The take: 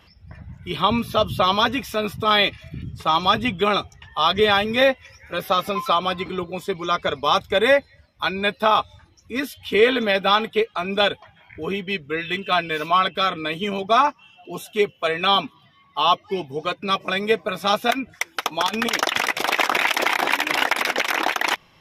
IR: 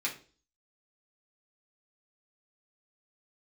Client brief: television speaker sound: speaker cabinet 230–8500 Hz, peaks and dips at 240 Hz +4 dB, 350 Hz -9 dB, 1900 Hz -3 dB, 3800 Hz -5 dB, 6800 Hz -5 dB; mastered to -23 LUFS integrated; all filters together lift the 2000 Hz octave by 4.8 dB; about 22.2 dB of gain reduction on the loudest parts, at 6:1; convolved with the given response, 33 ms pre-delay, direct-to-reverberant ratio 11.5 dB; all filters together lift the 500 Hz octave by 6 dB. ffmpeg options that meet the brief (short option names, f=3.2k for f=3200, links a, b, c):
-filter_complex "[0:a]equalizer=f=500:t=o:g=8.5,equalizer=f=2k:t=o:g=7.5,acompressor=threshold=-29dB:ratio=6,asplit=2[a][b];[1:a]atrim=start_sample=2205,adelay=33[c];[b][c]afir=irnorm=-1:irlink=0,volume=-16.5dB[d];[a][d]amix=inputs=2:normalize=0,highpass=f=230:w=0.5412,highpass=f=230:w=1.3066,equalizer=f=240:t=q:w=4:g=4,equalizer=f=350:t=q:w=4:g=-9,equalizer=f=1.9k:t=q:w=4:g=-3,equalizer=f=3.8k:t=q:w=4:g=-5,equalizer=f=6.8k:t=q:w=4:g=-5,lowpass=f=8.5k:w=0.5412,lowpass=f=8.5k:w=1.3066,volume=10dB"